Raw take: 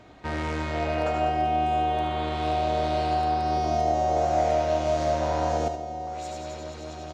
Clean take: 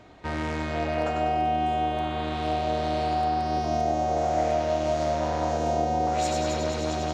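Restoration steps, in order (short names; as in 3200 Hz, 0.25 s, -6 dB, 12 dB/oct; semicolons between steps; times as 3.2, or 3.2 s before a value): inverse comb 76 ms -8.5 dB; gain 0 dB, from 5.68 s +10.5 dB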